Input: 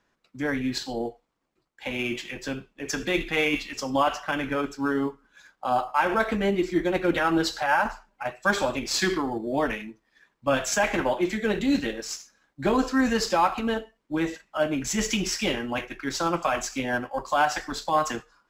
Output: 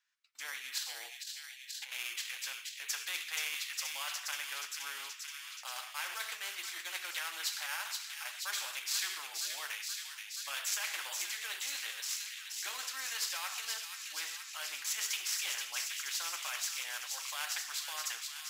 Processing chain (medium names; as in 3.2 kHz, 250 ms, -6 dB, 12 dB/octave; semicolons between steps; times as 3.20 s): gate -48 dBFS, range -16 dB; Bessel high-pass 2.3 kHz, order 4; on a send: feedback echo behind a high-pass 477 ms, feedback 61%, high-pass 2.9 kHz, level -7 dB; 0.85–1.92 s: on the sum: compressor with a negative ratio -46 dBFS, ratio -1; spectrum-flattening compressor 2:1; trim -3.5 dB